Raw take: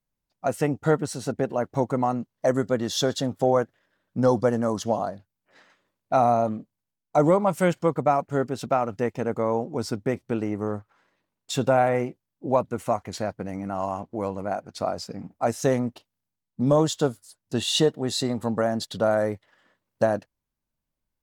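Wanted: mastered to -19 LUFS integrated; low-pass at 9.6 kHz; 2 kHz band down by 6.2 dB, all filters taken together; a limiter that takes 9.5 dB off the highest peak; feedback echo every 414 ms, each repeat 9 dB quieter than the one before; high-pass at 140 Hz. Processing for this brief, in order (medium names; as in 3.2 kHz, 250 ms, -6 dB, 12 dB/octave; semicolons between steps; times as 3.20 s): high-pass 140 Hz; low-pass 9.6 kHz; peaking EQ 2 kHz -9 dB; peak limiter -18 dBFS; feedback delay 414 ms, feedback 35%, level -9 dB; trim +11 dB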